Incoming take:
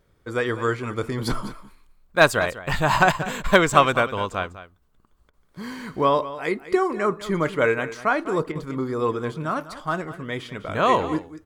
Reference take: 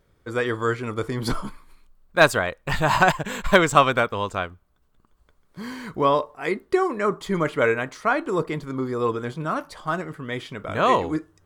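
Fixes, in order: interpolate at 5.30/8.52 s, 32 ms; inverse comb 200 ms -14.5 dB

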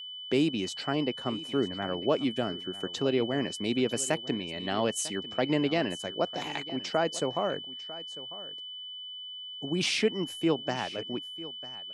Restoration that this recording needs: band-stop 3 kHz, Q 30; inverse comb 948 ms -17 dB

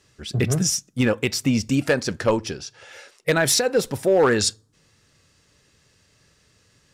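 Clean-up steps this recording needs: clip repair -11 dBFS

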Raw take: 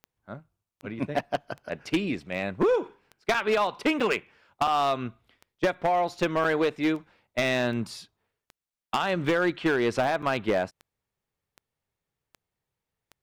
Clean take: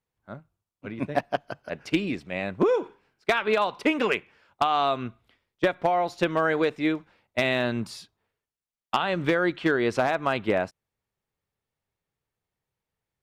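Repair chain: clip repair -18 dBFS; de-click; interpolate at 3.34/4.00/4.67/6.44/8.70/10.22 s, 5.1 ms

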